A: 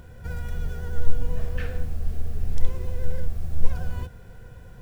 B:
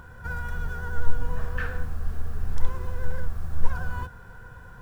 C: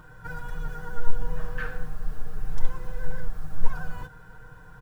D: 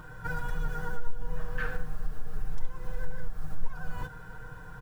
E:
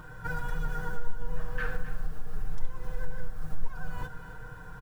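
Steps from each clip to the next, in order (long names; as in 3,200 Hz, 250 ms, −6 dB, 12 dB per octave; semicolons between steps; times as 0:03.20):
flat-topped bell 1,200 Hz +11.5 dB 1.2 octaves; level −2 dB
comb filter 6.5 ms, depth 79%; level −4 dB
downward compressor 2.5 to 1, threshold −28 dBFS, peak gain reduction 13.5 dB; level +3 dB
single-tap delay 262 ms −13 dB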